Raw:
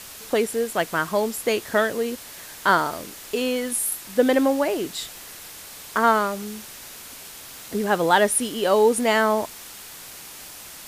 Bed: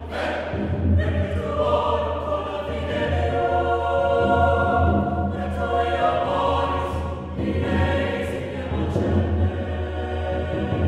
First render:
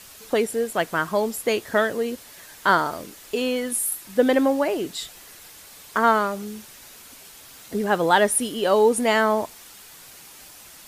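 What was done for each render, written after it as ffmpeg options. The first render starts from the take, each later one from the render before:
-af "afftdn=nr=6:nf=-41"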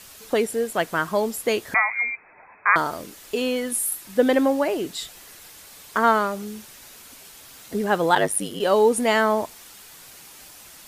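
-filter_complex "[0:a]asettb=1/sr,asplit=3[a][b][c];[a]atrim=end=1.744[d];[b]atrim=start=1.74:end=2.76,asetpts=PTS-STARTPTS,afade=t=in:d=0.004:c=qsin,afade=t=out:st=1.016:d=0.004:c=qsin,lowpass=f=2.2k:t=q:w=0.5098,lowpass=f=2.2k:t=q:w=0.6013,lowpass=f=2.2k:t=q:w=0.9,lowpass=f=2.2k:t=q:w=2.563,afreqshift=-2600[e];[c]atrim=start=2.756[f];[d][e]acrossfade=d=0.004:c1=hsin:c2=qsin[g];[g][f]acrossfade=d=0.004:c1=qsin:c2=hsin,asplit=3[h][i][j];[h]afade=t=out:st=8.14:d=0.02[k];[i]aeval=exprs='val(0)*sin(2*PI*50*n/s)':c=same,afade=t=in:st=8.14:d=0.02,afade=t=out:st=8.59:d=0.02[l];[j]afade=t=in:st=8.59:d=0.02[m];[k][l][m]amix=inputs=3:normalize=0"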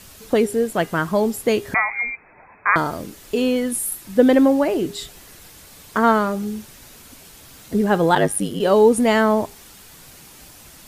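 -af "lowshelf=f=330:g=11.5,bandreject=f=406.3:t=h:w=4,bandreject=f=812.6:t=h:w=4,bandreject=f=1.2189k:t=h:w=4,bandreject=f=1.6252k:t=h:w=4,bandreject=f=2.0315k:t=h:w=4,bandreject=f=2.4378k:t=h:w=4,bandreject=f=2.8441k:t=h:w=4,bandreject=f=3.2504k:t=h:w=4"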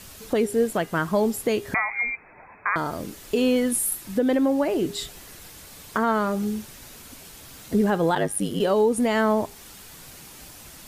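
-af "alimiter=limit=-12dB:level=0:latency=1:release=360"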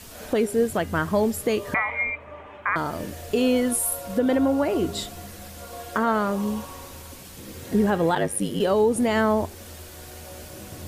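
-filter_complex "[1:a]volume=-17.5dB[a];[0:a][a]amix=inputs=2:normalize=0"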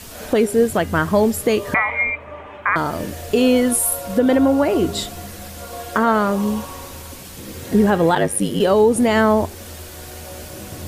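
-af "volume=6dB"

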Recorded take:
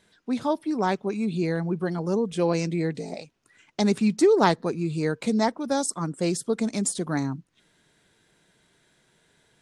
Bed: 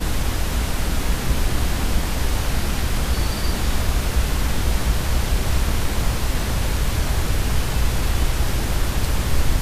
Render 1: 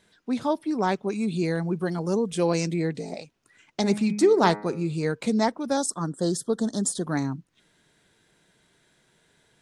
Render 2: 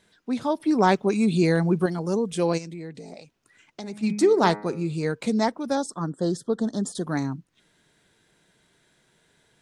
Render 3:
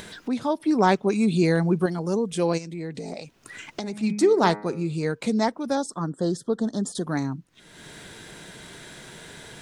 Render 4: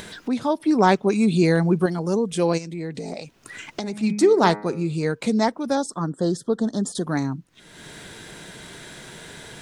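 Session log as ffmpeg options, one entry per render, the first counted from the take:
-filter_complex "[0:a]asettb=1/sr,asplit=3[a][b][c];[a]atrim=end=1.084[d];[b]atrim=start=1.08:end=2.74,asetpts=PTS-STARTPTS,afade=t=in:d=0.004:c=qsin,afade=t=out:st=1.656:d=0.004:c=qsin,highshelf=f=6.8k:g=10[e];[c]atrim=start=2.736[f];[d][e]acrossfade=d=0.004:c1=hsin:c2=qsin[g];[g][f]acrossfade=d=0.004:c1=qsin:c2=hsin,asplit=3[h][i][j];[h]afade=t=out:st=3.8:d=0.02[k];[i]bandreject=f=104.3:t=h:w=4,bandreject=f=208.6:t=h:w=4,bandreject=f=312.9:t=h:w=4,bandreject=f=417.2:t=h:w=4,bandreject=f=521.5:t=h:w=4,bandreject=f=625.8:t=h:w=4,bandreject=f=730.1:t=h:w=4,bandreject=f=834.4:t=h:w=4,bandreject=f=938.7:t=h:w=4,bandreject=f=1.043k:t=h:w=4,bandreject=f=1.1473k:t=h:w=4,bandreject=f=1.2516k:t=h:w=4,bandreject=f=1.3559k:t=h:w=4,bandreject=f=1.4602k:t=h:w=4,bandreject=f=1.5645k:t=h:w=4,bandreject=f=1.6688k:t=h:w=4,bandreject=f=1.7731k:t=h:w=4,bandreject=f=1.8774k:t=h:w=4,bandreject=f=1.9817k:t=h:w=4,bandreject=f=2.086k:t=h:w=4,bandreject=f=2.1903k:t=h:w=4,bandreject=f=2.2946k:t=h:w=4,bandreject=f=2.3989k:t=h:w=4,bandreject=f=2.5032k:t=h:w=4,afade=t=in:st=3.8:d=0.02,afade=t=out:st=5.12:d=0.02[l];[j]afade=t=in:st=5.12:d=0.02[m];[k][l][m]amix=inputs=3:normalize=0,asettb=1/sr,asplit=3[n][o][p];[n]atrim=end=5.774[q];[o]atrim=start=5.77:end=7.05,asetpts=PTS-STARTPTS,afade=t=in:d=0.004:c=qsin,afade=t=out:st=1.276:d=0.004:c=qsin,asuperstop=centerf=2400:order=12:qfactor=2[r];[p]atrim=start=7.046[s];[q][r]acrossfade=d=0.004:c1=hsin:c2=qsin[t];[t][s]acrossfade=d=0.004:c1=qsin:c2=hsin"
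-filter_complex "[0:a]asplit=3[a][b][c];[a]afade=t=out:st=2.57:d=0.02[d];[b]acompressor=threshold=-42dB:ratio=2:attack=3.2:release=140:knee=1:detection=peak,afade=t=in:st=2.57:d=0.02,afade=t=out:st=4.02:d=0.02[e];[c]afade=t=in:st=4.02:d=0.02[f];[d][e][f]amix=inputs=3:normalize=0,asettb=1/sr,asplit=3[g][h][i];[g]atrim=end=5.754[j];[h]atrim=start=5.75:end=6.95,asetpts=PTS-STARTPTS,afade=t=in:d=0.004:c=qsin,afade=t=out:st=1.196:d=0.004:c=qsin,aemphasis=mode=reproduction:type=50fm[k];[i]atrim=start=6.946[l];[j][k]acrossfade=d=0.004:c1=hsin:c2=qsin[m];[m][l]acrossfade=d=0.004:c1=qsin:c2=hsin,asplit=3[n][o][p];[n]atrim=end=0.602[q];[o]atrim=start=0.598:end=1.862,asetpts=PTS-STARTPTS,volume=5.5dB[r];[p]atrim=start=1.858[s];[q][r]acrossfade=d=0.004:c1=hsin:c2=hsin[t];[t][s]acrossfade=d=0.004:c1=hsin:c2=hsin"
-af "acompressor=mode=upward:threshold=-25dB:ratio=2.5"
-af "volume=2.5dB"

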